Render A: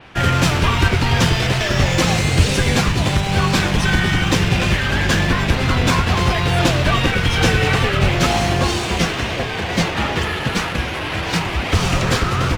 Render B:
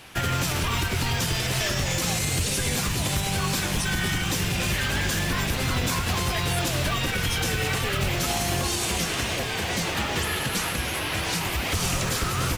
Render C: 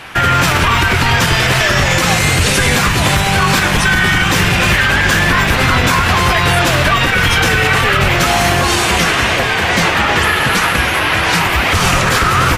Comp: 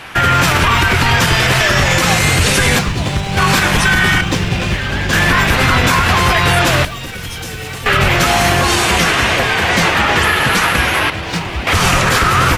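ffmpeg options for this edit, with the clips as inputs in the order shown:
-filter_complex "[0:a]asplit=3[s0][s1][s2];[2:a]asplit=5[s3][s4][s5][s6][s7];[s3]atrim=end=2.792[s8];[s0]atrim=start=2.788:end=3.372[s9];[s4]atrim=start=3.368:end=4.212[s10];[s1]atrim=start=4.208:end=5.132[s11];[s5]atrim=start=5.128:end=6.852[s12];[1:a]atrim=start=6.848:end=7.862[s13];[s6]atrim=start=7.858:end=11.102[s14];[s2]atrim=start=11.098:end=11.672[s15];[s7]atrim=start=11.668[s16];[s8][s9]acrossfade=d=0.004:c1=hsin:c2=hsin[s17];[s17][s10]acrossfade=d=0.004:c1=hsin:c2=hsin[s18];[s18][s11]acrossfade=d=0.004:c1=hsin:c2=hsin[s19];[s19][s12]acrossfade=d=0.004:c1=hsin:c2=hsin[s20];[s20][s13]acrossfade=d=0.004:c1=hsin:c2=hsin[s21];[s21][s14]acrossfade=d=0.004:c1=hsin:c2=hsin[s22];[s22][s15]acrossfade=d=0.004:c1=hsin:c2=hsin[s23];[s23][s16]acrossfade=d=0.004:c1=hsin:c2=hsin"

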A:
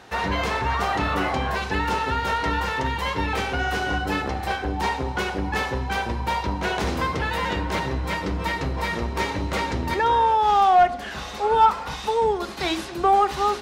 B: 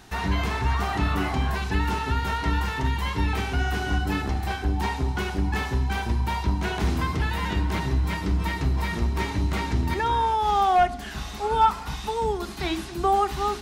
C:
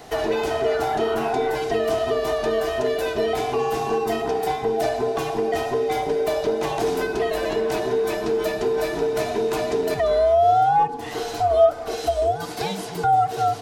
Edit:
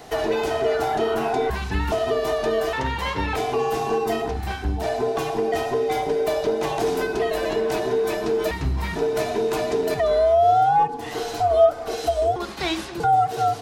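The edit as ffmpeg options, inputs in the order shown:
-filter_complex "[1:a]asplit=3[s0][s1][s2];[0:a]asplit=2[s3][s4];[2:a]asplit=6[s5][s6][s7][s8][s9][s10];[s5]atrim=end=1.502[s11];[s0]atrim=start=1.498:end=1.922[s12];[s6]atrim=start=1.918:end=2.732[s13];[s3]atrim=start=2.728:end=3.362[s14];[s7]atrim=start=3.358:end=4.4[s15];[s1]atrim=start=4.24:end=4.91[s16];[s8]atrim=start=4.75:end=8.512[s17];[s2]atrim=start=8.508:end=8.962[s18];[s9]atrim=start=8.958:end=12.362[s19];[s4]atrim=start=12.358:end=13.002[s20];[s10]atrim=start=12.998[s21];[s11][s12]acrossfade=d=0.004:c1=hsin:c2=hsin[s22];[s22][s13]acrossfade=d=0.004:c1=hsin:c2=hsin[s23];[s23][s14]acrossfade=d=0.004:c1=hsin:c2=hsin[s24];[s24][s15]acrossfade=d=0.004:c1=hsin:c2=hsin[s25];[s25][s16]acrossfade=d=0.16:c1=tri:c2=tri[s26];[s26][s17]acrossfade=d=0.16:c1=tri:c2=tri[s27];[s27][s18]acrossfade=d=0.004:c1=hsin:c2=hsin[s28];[s28][s19]acrossfade=d=0.004:c1=hsin:c2=hsin[s29];[s29][s20]acrossfade=d=0.004:c1=hsin:c2=hsin[s30];[s30][s21]acrossfade=d=0.004:c1=hsin:c2=hsin"

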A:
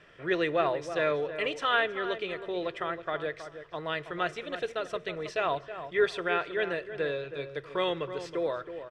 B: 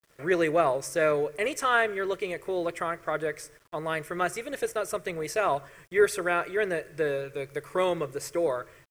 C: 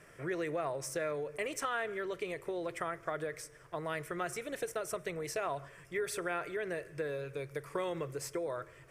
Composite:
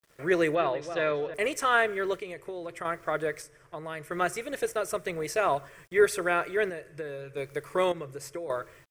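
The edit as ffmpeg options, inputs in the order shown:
-filter_complex "[2:a]asplit=4[s0][s1][s2][s3];[1:a]asplit=6[s4][s5][s6][s7][s8][s9];[s4]atrim=end=0.552[s10];[0:a]atrim=start=0.548:end=1.342[s11];[s5]atrim=start=1.338:end=2.202[s12];[s0]atrim=start=2.198:end=2.852[s13];[s6]atrim=start=2.848:end=3.422[s14];[s1]atrim=start=3.418:end=4.112[s15];[s7]atrim=start=4.108:end=6.702[s16];[s2]atrim=start=6.698:end=7.372[s17];[s8]atrim=start=7.368:end=7.922[s18];[s3]atrim=start=7.918:end=8.502[s19];[s9]atrim=start=8.498[s20];[s10][s11]acrossfade=d=0.004:c1=hsin:c2=hsin[s21];[s21][s12]acrossfade=d=0.004:c1=hsin:c2=hsin[s22];[s22][s13]acrossfade=d=0.004:c1=hsin:c2=hsin[s23];[s23][s14]acrossfade=d=0.004:c1=hsin:c2=hsin[s24];[s24][s15]acrossfade=d=0.004:c1=hsin:c2=hsin[s25];[s25][s16]acrossfade=d=0.004:c1=hsin:c2=hsin[s26];[s26][s17]acrossfade=d=0.004:c1=hsin:c2=hsin[s27];[s27][s18]acrossfade=d=0.004:c1=hsin:c2=hsin[s28];[s28][s19]acrossfade=d=0.004:c1=hsin:c2=hsin[s29];[s29][s20]acrossfade=d=0.004:c1=hsin:c2=hsin"

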